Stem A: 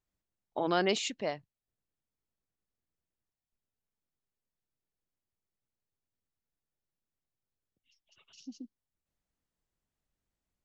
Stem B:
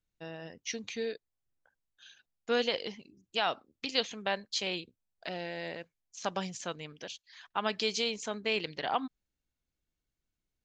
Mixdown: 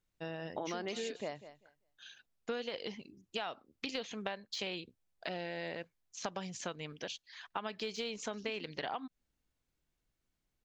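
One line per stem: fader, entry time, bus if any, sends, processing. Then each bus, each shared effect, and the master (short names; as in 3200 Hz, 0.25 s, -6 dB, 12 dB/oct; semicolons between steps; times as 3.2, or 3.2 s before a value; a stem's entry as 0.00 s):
-2.0 dB, 0.00 s, no send, echo send -18 dB, dry
+2.5 dB, 0.00 s, no send, no echo send, de-esser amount 90%; high shelf 6600 Hz -6 dB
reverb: off
echo: feedback echo 0.196 s, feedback 17%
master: compressor 12:1, threshold -35 dBFS, peak gain reduction 13.5 dB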